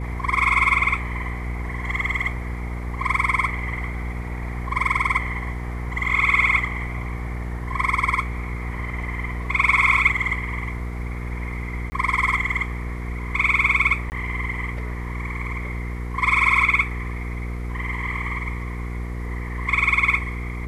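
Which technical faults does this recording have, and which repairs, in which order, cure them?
hum 60 Hz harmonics 8 -29 dBFS
11.9–11.92 gap 20 ms
14.1–14.12 gap 19 ms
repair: de-hum 60 Hz, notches 8; interpolate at 11.9, 20 ms; interpolate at 14.1, 19 ms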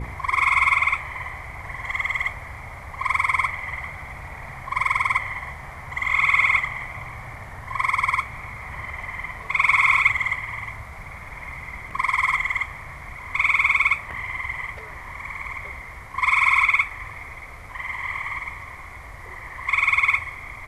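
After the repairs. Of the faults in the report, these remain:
none

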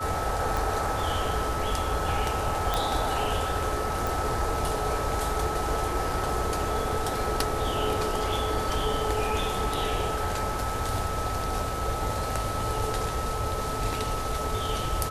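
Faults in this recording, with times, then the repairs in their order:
tone 1300 Hz -33 dBFS
0.57 pop
2.74 pop -10 dBFS
4.07 pop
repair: de-click; notch 1300 Hz, Q 30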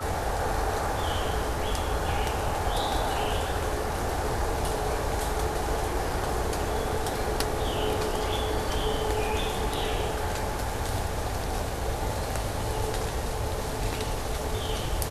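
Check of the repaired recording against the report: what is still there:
none

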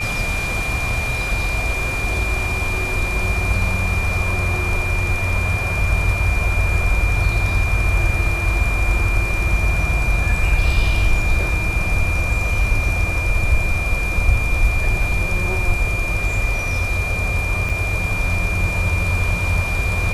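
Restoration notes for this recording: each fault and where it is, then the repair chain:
tone 2400 Hz -23 dBFS
17.69–17.7 gap 5.7 ms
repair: notch 2400 Hz, Q 30; interpolate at 17.69, 5.7 ms

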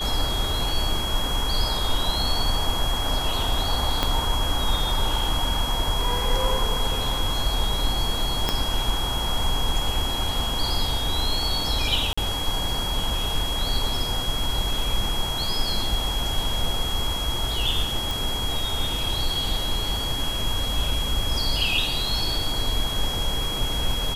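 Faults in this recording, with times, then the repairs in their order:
tone 3300 Hz -28 dBFS
4.03 pop -7 dBFS
8.49 pop -7 dBFS
12.13–12.18 gap 45 ms
18.11 pop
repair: de-click; notch 3300 Hz, Q 30; interpolate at 12.13, 45 ms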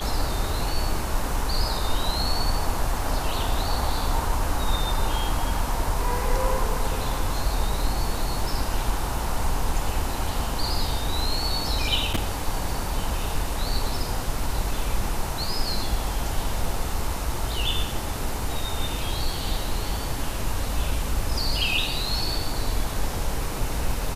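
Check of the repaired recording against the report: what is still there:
4.03 pop
8.49 pop

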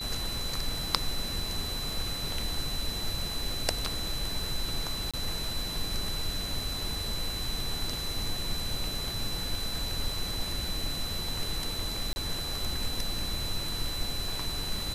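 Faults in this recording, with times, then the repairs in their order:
crackle 22/s -39 dBFS
tone 4000 Hz -35 dBFS
5.11–5.14 gap 26 ms
12.13–12.16 gap 30 ms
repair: de-click; notch 4000 Hz, Q 30; interpolate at 5.11, 26 ms; interpolate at 12.13, 30 ms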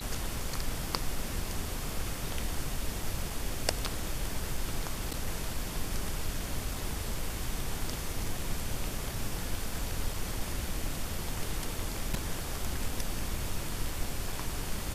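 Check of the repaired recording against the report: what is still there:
none

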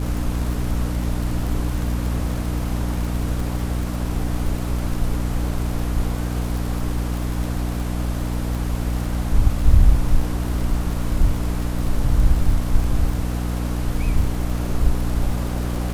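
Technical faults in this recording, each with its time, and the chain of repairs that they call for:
crackle 56/s -26 dBFS
hum 60 Hz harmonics 5 -24 dBFS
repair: de-click; de-hum 60 Hz, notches 5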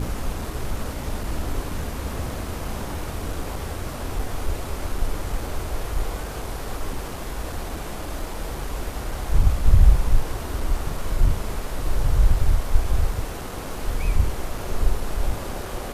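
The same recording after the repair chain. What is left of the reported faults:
none

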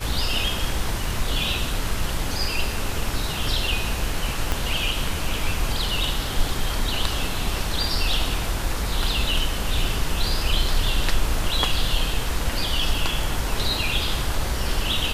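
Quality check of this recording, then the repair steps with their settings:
4.52 pop -8 dBFS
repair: de-click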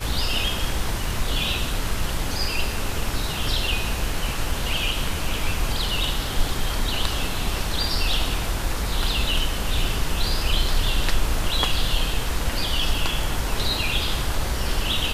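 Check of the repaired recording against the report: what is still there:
4.52 pop

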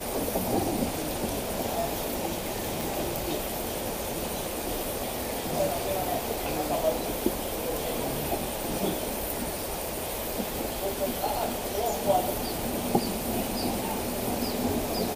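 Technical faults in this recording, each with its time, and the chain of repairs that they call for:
2.81 pop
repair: de-click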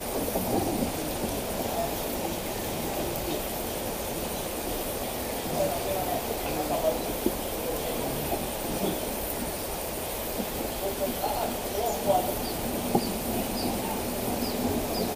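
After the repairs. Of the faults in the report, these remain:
none

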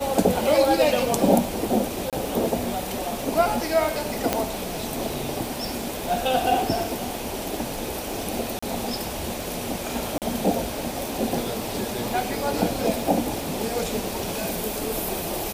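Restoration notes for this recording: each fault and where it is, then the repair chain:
crackle 22/s -29 dBFS
2.1–2.13 gap 27 ms
4.33 pop -5 dBFS
8.59–8.62 gap 35 ms
10.18–10.22 gap 38 ms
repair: de-click; interpolate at 2.1, 27 ms; interpolate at 8.59, 35 ms; interpolate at 10.18, 38 ms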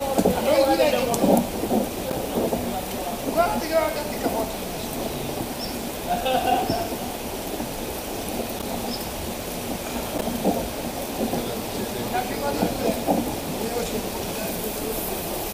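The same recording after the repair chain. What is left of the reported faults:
none

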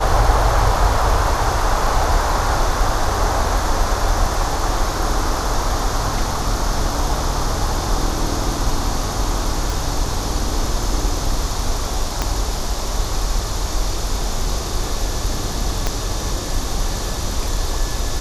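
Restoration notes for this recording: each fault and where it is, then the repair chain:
9.7 pop
12.22 pop -4 dBFS
15.87 pop -5 dBFS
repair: de-click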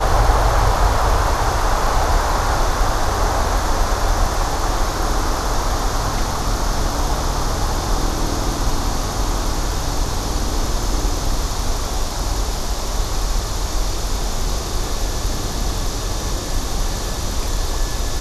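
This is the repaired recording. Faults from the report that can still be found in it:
12.22 pop
15.87 pop

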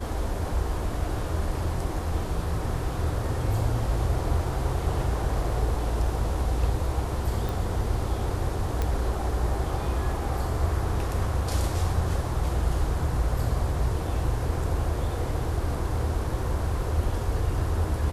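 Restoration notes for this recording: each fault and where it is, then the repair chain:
7.49 pop
8.82 pop -14 dBFS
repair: de-click

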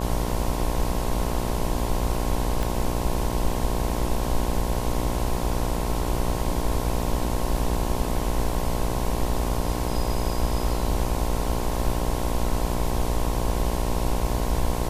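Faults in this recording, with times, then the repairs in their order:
buzz 60 Hz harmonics 18 -29 dBFS
2.63 pop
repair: de-click; de-hum 60 Hz, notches 18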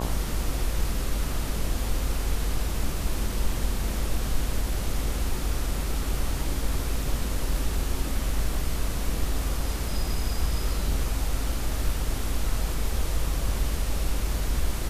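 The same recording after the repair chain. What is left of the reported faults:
2.63 pop

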